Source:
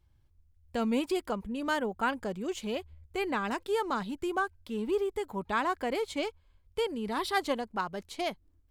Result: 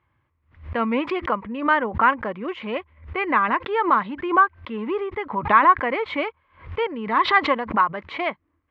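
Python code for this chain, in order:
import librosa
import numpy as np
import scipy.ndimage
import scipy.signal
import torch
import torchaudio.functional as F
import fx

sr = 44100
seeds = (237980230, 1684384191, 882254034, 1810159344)

y = fx.cabinet(x, sr, low_hz=170.0, low_slope=12, high_hz=2600.0, hz=(180.0, 260.0, 400.0, 730.0, 1100.0, 2000.0), db=(-6, -3, -6, -4, 10, 7))
y = fx.pre_swell(y, sr, db_per_s=140.0)
y = y * 10.0 ** (9.0 / 20.0)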